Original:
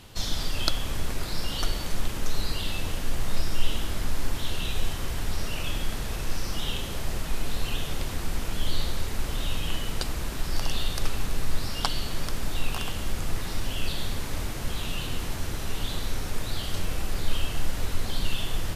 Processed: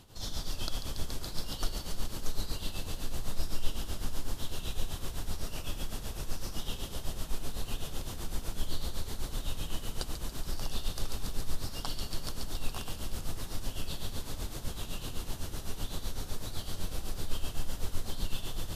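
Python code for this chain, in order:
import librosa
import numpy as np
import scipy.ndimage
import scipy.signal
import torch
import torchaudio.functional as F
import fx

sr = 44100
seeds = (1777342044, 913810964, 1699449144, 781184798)

p1 = x + fx.echo_wet_highpass(x, sr, ms=141, feedback_pct=82, hz=2900.0, wet_db=-6.5, dry=0)
p2 = p1 * (1.0 - 0.66 / 2.0 + 0.66 / 2.0 * np.cos(2.0 * np.pi * 7.9 * (np.arange(len(p1)) / sr)))
p3 = fx.peak_eq(p2, sr, hz=2200.0, db=-7.0, octaves=1.1)
y = F.gain(torch.from_numpy(p3), -4.0).numpy()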